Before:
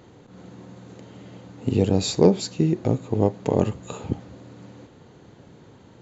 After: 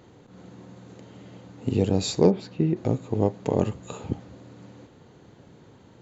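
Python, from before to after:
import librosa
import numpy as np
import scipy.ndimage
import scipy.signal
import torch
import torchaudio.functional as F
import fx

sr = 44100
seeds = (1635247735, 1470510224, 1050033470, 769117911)

y = fx.lowpass(x, sr, hz=fx.line((2.3, 2200.0), (2.75, 3200.0)), slope=12, at=(2.3, 2.75), fade=0.02)
y = y * librosa.db_to_amplitude(-2.5)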